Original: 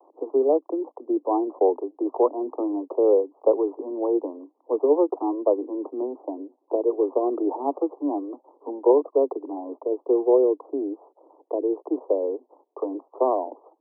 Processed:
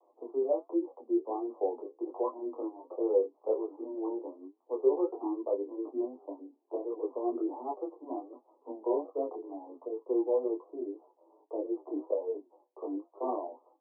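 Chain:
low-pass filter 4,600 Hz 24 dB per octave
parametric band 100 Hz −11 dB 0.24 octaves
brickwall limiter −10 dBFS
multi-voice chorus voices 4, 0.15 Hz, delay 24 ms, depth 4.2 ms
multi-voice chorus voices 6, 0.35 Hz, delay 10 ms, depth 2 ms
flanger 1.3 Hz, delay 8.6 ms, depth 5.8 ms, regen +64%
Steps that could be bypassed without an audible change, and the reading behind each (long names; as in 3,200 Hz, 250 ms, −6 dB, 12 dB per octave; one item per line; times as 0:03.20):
low-pass filter 4,600 Hz: nothing at its input above 1,100 Hz
parametric band 100 Hz: nothing at its input below 230 Hz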